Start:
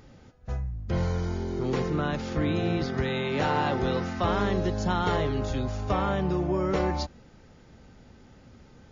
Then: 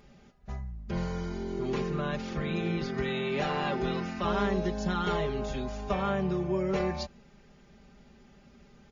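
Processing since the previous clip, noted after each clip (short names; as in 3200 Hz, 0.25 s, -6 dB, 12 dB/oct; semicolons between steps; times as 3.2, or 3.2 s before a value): bell 2500 Hz +3.5 dB 0.59 oct; comb 5 ms, depth 81%; gain -6 dB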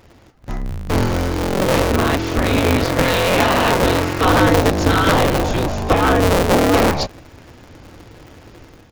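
cycle switcher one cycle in 2, inverted; AGC gain up to 7 dB; gain +8 dB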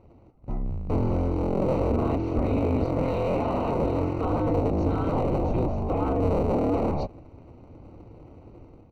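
limiter -10 dBFS, peak gain reduction 8.5 dB; running mean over 26 samples; gain -4.5 dB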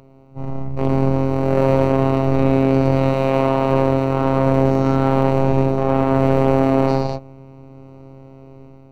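spectral dilation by 0.24 s; added harmonics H 4 -24 dB, 7 -28 dB, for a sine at -8.5 dBFS; robotiser 134 Hz; gain +6 dB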